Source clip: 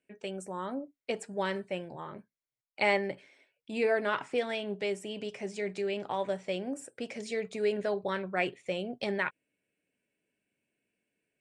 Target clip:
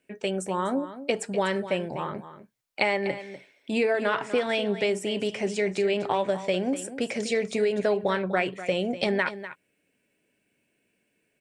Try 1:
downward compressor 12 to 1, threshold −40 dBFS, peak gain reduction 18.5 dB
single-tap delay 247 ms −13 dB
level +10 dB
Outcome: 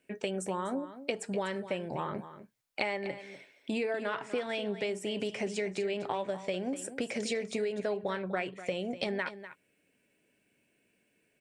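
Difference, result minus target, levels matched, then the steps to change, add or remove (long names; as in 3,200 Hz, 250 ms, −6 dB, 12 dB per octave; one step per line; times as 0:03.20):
downward compressor: peak gain reduction +8.5 dB
change: downward compressor 12 to 1, threshold −30.5 dBFS, peak gain reduction 10 dB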